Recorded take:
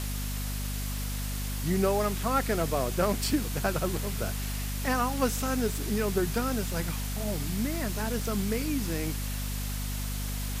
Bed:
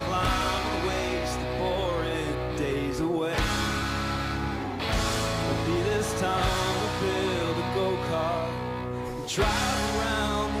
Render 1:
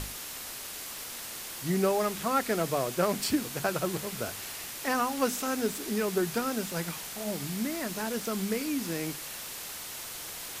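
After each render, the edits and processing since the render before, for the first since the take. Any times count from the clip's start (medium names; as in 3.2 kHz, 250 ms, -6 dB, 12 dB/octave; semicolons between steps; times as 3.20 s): hum notches 50/100/150/200/250 Hz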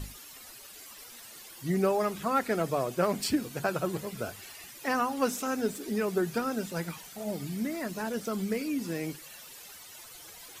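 noise reduction 13 dB, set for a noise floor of -41 dBFS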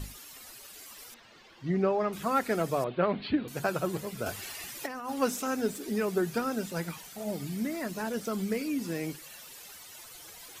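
1.14–2.13 s: distance through air 210 m; 2.84–3.48 s: steep low-pass 4.1 kHz 72 dB/octave; 4.26–5.10 s: compressor with a negative ratio -36 dBFS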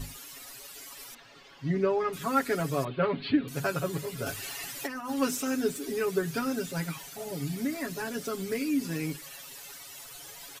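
comb 7.2 ms, depth 90%; dynamic bell 730 Hz, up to -6 dB, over -40 dBFS, Q 1.2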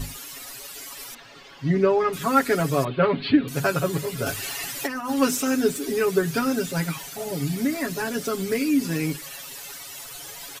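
trim +7 dB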